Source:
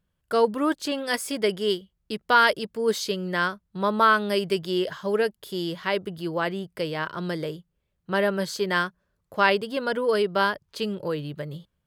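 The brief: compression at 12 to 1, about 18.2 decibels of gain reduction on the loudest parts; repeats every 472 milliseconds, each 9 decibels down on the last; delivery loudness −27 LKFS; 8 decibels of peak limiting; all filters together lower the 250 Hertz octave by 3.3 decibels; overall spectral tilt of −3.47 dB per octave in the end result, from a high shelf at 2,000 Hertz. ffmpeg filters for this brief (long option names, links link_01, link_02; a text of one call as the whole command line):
ffmpeg -i in.wav -af "equalizer=frequency=250:width_type=o:gain=-5,highshelf=frequency=2000:gain=7,acompressor=threshold=-30dB:ratio=12,alimiter=limit=-24dB:level=0:latency=1,aecho=1:1:472|944|1416|1888:0.355|0.124|0.0435|0.0152,volume=8.5dB" out.wav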